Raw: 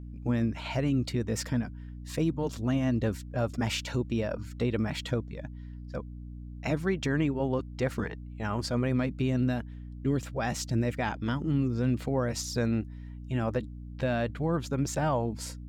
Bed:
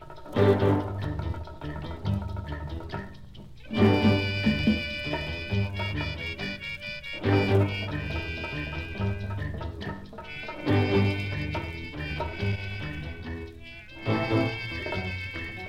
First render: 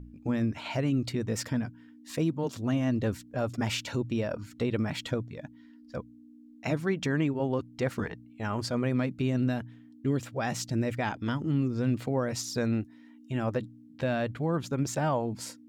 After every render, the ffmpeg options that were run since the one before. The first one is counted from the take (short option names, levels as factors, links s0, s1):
-af "bandreject=f=60:t=h:w=4,bandreject=f=120:t=h:w=4,bandreject=f=180:t=h:w=4"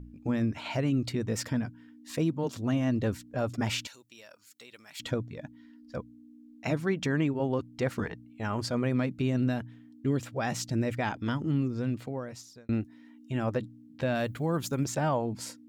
-filter_complex "[0:a]asettb=1/sr,asplit=3[s0][s1][s2];[s0]atrim=end=3.874[s3];[s1]atrim=start=3.87:end=5,asetpts=PTS-STARTPTS,afade=t=in:d=0.004:c=qsin,afade=t=out:st=1.126:d=0.004:c=qsin,aderivative[s4];[s2]atrim=start=4.996[s5];[s3][s4]acrossfade=d=0.004:c1=hsin:c2=qsin[s6];[s6][s5]acrossfade=d=0.004:c1=qsin:c2=hsin,asettb=1/sr,asplit=3[s7][s8][s9];[s7]atrim=end=14.154[s10];[s8]atrim=start=14.15:end=14.85,asetpts=PTS-STARTPTS,afade=t=in:d=0.004:c=qsin,afade=t=out:st=0.696:d=0.004:c=qsin,aemphasis=mode=production:type=50fm[s11];[s9]atrim=start=14.846[s12];[s10][s11]acrossfade=d=0.004:c1=hsin:c2=qsin[s13];[s13][s12]acrossfade=d=0.004:c1=qsin:c2=hsin,asplit=2[s14][s15];[s14]atrim=end=12.69,asetpts=PTS-STARTPTS,afade=t=out:st=11.49:d=1.2[s16];[s15]atrim=start=12.69,asetpts=PTS-STARTPTS,afade=t=in:d=0.004:c=hsin[s17];[s16][s17]concat=n=2:v=0:a=1"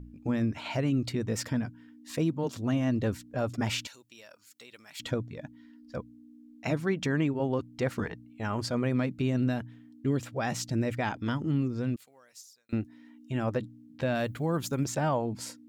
-filter_complex "[0:a]asettb=1/sr,asplit=3[s0][s1][s2];[s0]atrim=end=11.964[s3];[s1]atrim=start=11.96:end=12.73,asetpts=PTS-STARTPTS,afade=t=in:d=0.004:c=qsin,afade=t=out:st=0.766:d=0.004:c=qsin,aderivative[s4];[s2]atrim=start=12.726[s5];[s3][s4]acrossfade=d=0.004:c1=hsin:c2=qsin[s6];[s6][s5]acrossfade=d=0.004:c1=qsin:c2=hsin"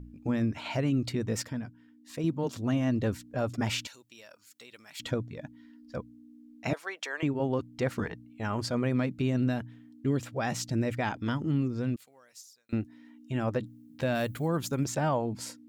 -filter_complex "[0:a]asettb=1/sr,asplit=3[s0][s1][s2];[s0]atrim=end=6.734[s3];[s1]atrim=start=6.73:end=7.23,asetpts=PTS-STARTPTS,afade=t=in:d=0.004:c=qsin,afade=t=out:st=0.496:d=0.004:c=qsin,highpass=f=570:w=0.5412,highpass=f=570:w=1.3066[s4];[s2]atrim=start=7.226[s5];[s3][s4]acrossfade=d=0.004:c1=hsin:c2=qsin[s6];[s6][s5]acrossfade=d=0.004:c1=qsin:c2=hsin,asettb=1/sr,asplit=3[s7][s8][s9];[s7]atrim=end=13.664[s10];[s8]atrim=start=13.66:end=14.48,asetpts=PTS-STARTPTS,afade=t=in:d=0.004:c=qsin,afade=t=out:st=0.816:d=0.004:c=qsin,highshelf=f=8500:g=11.5[s11];[s9]atrim=start=14.476[s12];[s10][s11]acrossfade=d=0.004:c1=hsin:c2=qsin[s13];[s13][s12]acrossfade=d=0.004:c1=qsin:c2=hsin,asplit=3[s14][s15][s16];[s14]atrim=end=1.422[s17];[s15]atrim=start=1.418:end=2.242,asetpts=PTS-STARTPTS,volume=0.531[s18];[s16]atrim=start=2.238[s19];[s17][s18]acrossfade=d=0.004:c1=hsin:c2=hsin[s20];[s20][s19]acrossfade=d=0.004:c1=hsin:c2=hsin"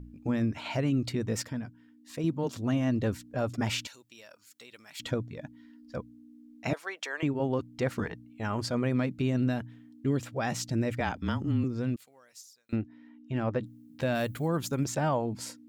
-filter_complex "[0:a]asettb=1/sr,asplit=3[s0][s1][s2];[s0]atrim=end=11.004[s3];[s1]atrim=start=11:end=11.64,asetpts=PTS-STARTPTS,afade=t=in:d=0.004:c=qsin,afade=t=out:st=0.636:d=0.004:c=qsin,afreqshift=-26[s4];[s2]atrim=start=11.636[s5];[s3][s4]acrossfade=d=0.004:c1=hsin:c2=qsin[s6];[s6][s5]acrossfade=d=0.004:c1=qsin:c2=hsin,asettb=1/sr,asplit=3[s7][s8][s9];[s7]atrim=end=12.764[s10];[s8]atrim=start=12.76:end=13.62,asetpts=PTS-STARTPTS,afade=t=in:d=0.004:c=qsin,afade=t=out:st=0.856:d=0.004:c=qsin,adynamicsmooth=sensitivity=3:basefreq=3800[s11];[s9]atrim=start=13.616[s12];[s10][s11]acrossfade=d=0.004:c1=hsin:c2=qsin[s13];[s13][s12]acrossfade=d=0.004:c1=qsin:c2=hsin"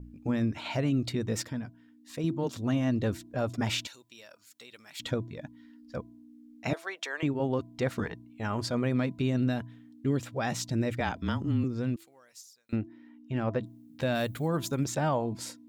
-af "adynamicequalizer=threshold=0.001:dfrequency=3700:dqfactor=7.7:tfrequency=3700:tqfactor=7.7:attack=5:release=100:ratio=0.375:range=2.5:mode=boostabove:tftype=bell,bandreject=f=331.9:t=h:w=4,bandreject=f=663.8:t=h:w=4,bandreject=f=995.7:t=h:w=4"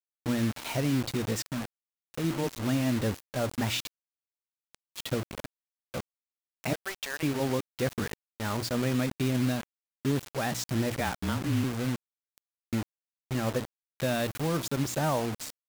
-af "acrusher=bits=5:mix=0:aa=0.000001"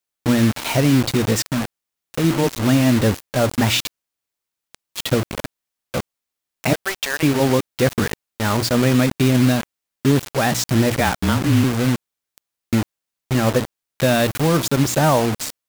-af "volume=3.98"